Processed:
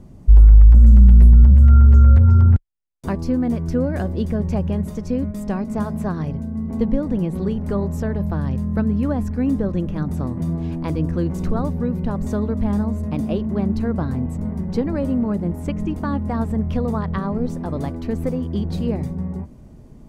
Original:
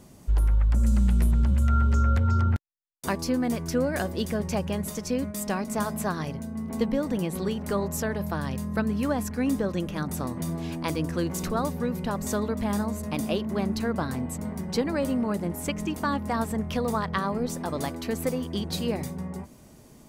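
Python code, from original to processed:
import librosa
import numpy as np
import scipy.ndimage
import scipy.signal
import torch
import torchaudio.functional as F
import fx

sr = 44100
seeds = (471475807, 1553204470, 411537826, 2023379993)

y = fx.tilt_eq(x, sr, slope=-3.5)
y = y * 10.0 ** (-1.0 / 20.0)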